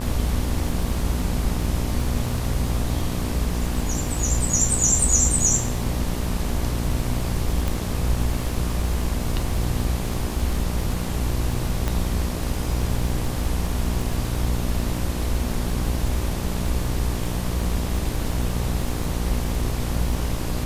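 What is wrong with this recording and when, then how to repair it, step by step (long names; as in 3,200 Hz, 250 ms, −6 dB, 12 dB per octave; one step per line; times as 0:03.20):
mains buzz 60 Hz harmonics 20 −27 dBFS
surface crackle 38 per second −28 dBFS
0:07.68: click
0:11.88: click −10 dBFS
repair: click removal
hum removal 60 Hz, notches 20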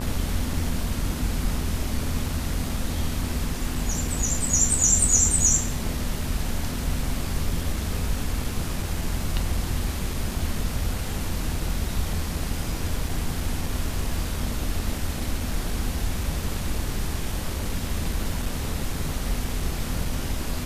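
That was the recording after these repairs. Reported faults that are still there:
0:11.88: click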